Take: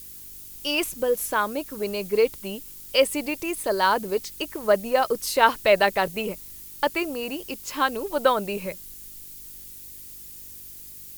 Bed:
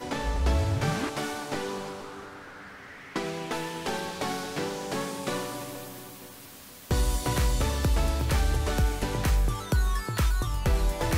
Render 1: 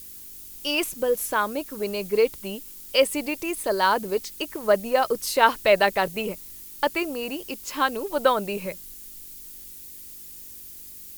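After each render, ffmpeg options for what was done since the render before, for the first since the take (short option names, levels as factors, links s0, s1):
-af "bandreject=f=50:t=h:w=4,bandreject=f=100:t=h:w=4,bandreject=f=150:t=h:w=4"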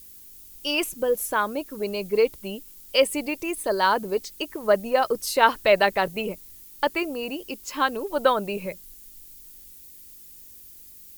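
-af "afftdn=nr=6:nf=-42"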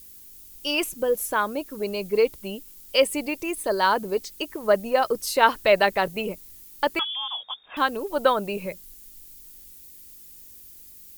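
-filter_complex "[0:a]asettb=1/sr,asplit=3[s0][s1][s2];[s0]atrim=end=6.994[s3];[s1]atrim=start=6.99:end=7.77,asetpts=PTS-STARTPTS,afade=t=in:d=0.004:c=qsin,afade=t=out:st=0.776:d=0.004:c=qsin,lowpass=f=3100:t=q:w=0.5098,lowpass=f=3100:t=q:w=0.6013,lowpass=f=3100:t=q:w=0.9,lowpass=f=3100:t=q:w=2.563,afreqshift=-3700[s4];[s2]atrim=start=7.766[s5];[s3][s4]acrossfade=d=0.004:c1=hsin:c2=qsin[s6];[s6][s5]acrossfade=d=0.004:c1=qsin:c2=hsin"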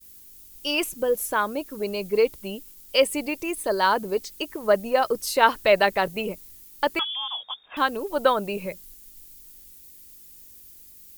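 -af "agate=range=0.0224:threshold=0.00631:ratio=3:detection=peak"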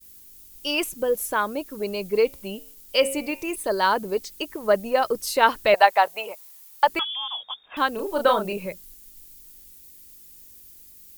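-filter_complex "[0:a]asettb=1/sr,asplit=3[s0][s1][s2];[s0]atrim=end=2.264[s3];[s1]atrim=start=2.26:end=3.56,asetpts=PTS-STARTPTS,afade=t=in:d=0.004:c=qsin,afade=t=out:st=1.296:d=0.004:c=qsin,bandreject=f=90.66:t=h:w=4,bandreject=f=181.32:t=h:w=4,bandreject=f=271.98:t=h:w=4,bandreject=f=362.64:t=h:w=4,bandreject=f=453.3:t=h:w=4,bandreject=f=543.96:t=h:w=4,bandreject=f=634.62:t=h:w=4,bandreject=f=725.28:t=h:w=4,bandreject=f=815.94:t=h:w=4,bandreject=f=906.6:t=h:w=4,bandreject=f=997.26:t=h:w=4,bandreject=f=1087.92:t=h:w=4,bandreject=f=1178.58:t=h:w=4,bandreject=f=1269.24:t=h:w=4,bandreject=f=1359.9:t=h:w=4,bandreject=f=1450.56:t=h:w=4,bandreject=f=1541.22:t=h:w=4,bandreject=f=1631.88:t=h:w=4,bandreject=f=1722.54:t=h:w=4,bandreject=f=1813.2:t=h:w=4,bandreject=f=1903.86:t=h:w=4,bandreject=f=1994.52:t=h:w=4,bandreject=f=2085.18:t=h:w=4,bandreject=f=2175.84:t=h:w=4,bandreject=f=2266.5:t=h:w=4,bandreject=f=2357.16:t=h:w=4,bandreject=f=2447.82:t=h:w=4,bandreject=f=2538.48:t=h:w=4,bandreject=f=2629.14:t=h:w=4,bandreject=f=2719.8:t=h:w=4,bandreject=f=2810.46:t=h:w=4,bandreject=f=2901.12:t=h:w=4,bandreject=f=2991.78:t=h:w=4[s4];[s2]atrim=start=3.556[s5];[s3][s4]acrossfade=d=0.004:c1=hsin:c2=qsin[s6];[s6][s5]acrossfade=d=0.004:c1=qsin:c2=hsin,asettb=1/sr,asplit=3[s7][s8][s9];[s7]atrim=end=5.744[s10];[s8]atrim=start=5.74:end=6.88,asetpts=PTS-STARTPTS,afade=t=in:d=0.004:c=qsin,afade=t=out:st=1.136:d=0.004:c=qsin,highpass=f=770:t=q:w=2.5[s11];[s9]atrim=start=6.876[s12];[s10][s11]acrossfade=d=0.004:c1=hsin:c2=qsin[s13];[s13][s12]acrossfade=d=0.004:c1=qsin:c2=hsin,asettb=1/sr,asplit=3[s14][s15][s16];[s14]atrim=end=7.944[s17];[s15]atrim=start=7.94:end=8.53,asetpts=PTS-STARTPTS,afade=t=in:d=0.004:c=qsin,afade=t=out:st=0.586:d=0.004:c=qsin,asplit=2[s18][s19];[s19]adelay=33,volume=0.596[s20];[s18][s20]amix=inputs=2:normalize=0,atrim=end_sample=26019[s21];[s16]atrim=start=8.526[s22];[s17][s21]acrossfade=d=0.004:c1=hsin:c2=qsin[s23];[s23][s22]acrossfade=d=0.004:c1=qsin:c2=hsin"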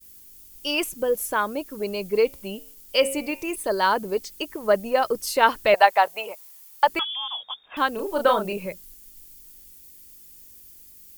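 -af "bandreject=f=3900:w=22"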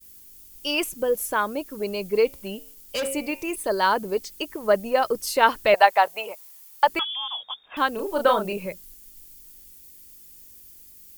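-filter_complex "[0:a]asettb=1/sr,asplit=3[s0][s1][s2];[s0]atrim=end=2.354[s3];[s1]atrim=start=2.35:end=3.11,asetpts=PTS-STARTPTS,afade=t=in:d=0.004:c=qsin,afade=t=out:st=0.756:d=0.004:c=qsin,asoftclip=type=hard:threshold=0.0631[s4];[s2]atrim=start=3.106[s5];[s3][s4]acrossfade=d=0.004:c1=hsin:c2=qsin[s6];[s6][s5]acrossfade=d=0.004:c1=qsin:c2=hsin"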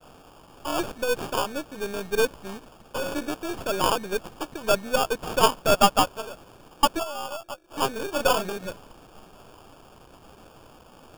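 -af "aeval=exprs='if(lt(val(0),0),0.447*val(0),val(0))':c=same,acrusher=samples=22:mix=1:aa=0.000001"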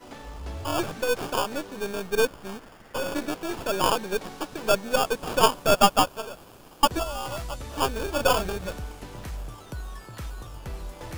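-filter_complex "[1:a]volume=0.266[s0];[0:a][s0]amix=inputs=2:normalize=0"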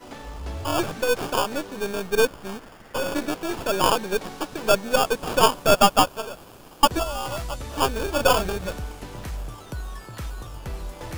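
-af "volume=1.41,alimiter=limit=0.708:level=0:latency=1"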